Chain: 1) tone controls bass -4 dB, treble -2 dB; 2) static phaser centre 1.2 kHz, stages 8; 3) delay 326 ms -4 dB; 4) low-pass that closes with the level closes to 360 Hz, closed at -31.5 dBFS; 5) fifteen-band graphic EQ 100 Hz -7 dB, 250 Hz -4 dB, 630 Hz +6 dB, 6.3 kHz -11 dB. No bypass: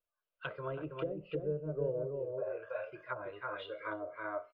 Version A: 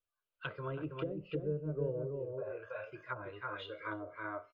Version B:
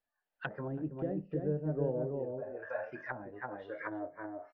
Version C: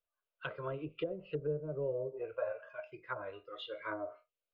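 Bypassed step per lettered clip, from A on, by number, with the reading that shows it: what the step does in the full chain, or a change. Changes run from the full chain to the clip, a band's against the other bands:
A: 5, loudness change -1.0 LU; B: 2, 250 Hz band +6.5 dB; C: 3, momentary loudness spread change +2 LU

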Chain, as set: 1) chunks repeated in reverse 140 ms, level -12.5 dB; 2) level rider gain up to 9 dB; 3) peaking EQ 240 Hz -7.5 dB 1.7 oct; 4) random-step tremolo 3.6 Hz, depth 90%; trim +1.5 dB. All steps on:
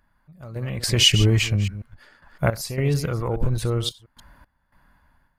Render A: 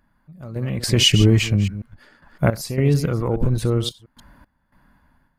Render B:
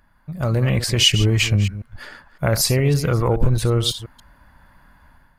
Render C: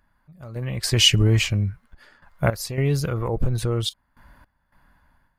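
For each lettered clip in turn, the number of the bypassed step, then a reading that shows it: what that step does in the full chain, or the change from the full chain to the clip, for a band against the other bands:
3, 250 Hz band +6.0 dB; 4, momentary loudness spread change -2 LU; 1, momentary loudness spread change -1 LU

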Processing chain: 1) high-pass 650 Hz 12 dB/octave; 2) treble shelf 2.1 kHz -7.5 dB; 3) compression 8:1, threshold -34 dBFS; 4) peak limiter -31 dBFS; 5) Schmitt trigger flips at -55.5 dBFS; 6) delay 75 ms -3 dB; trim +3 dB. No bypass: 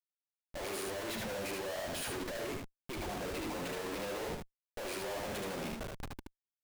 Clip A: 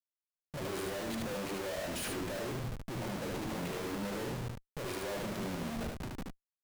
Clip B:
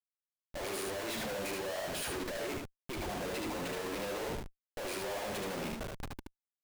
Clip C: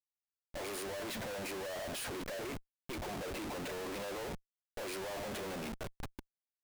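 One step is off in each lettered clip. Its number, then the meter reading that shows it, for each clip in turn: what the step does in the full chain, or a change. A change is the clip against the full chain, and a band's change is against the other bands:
1, 125 Hz band +7.0 dB; 3, mean gain reduction 5.0 dB; 6, momentary loudness spread change +1 LU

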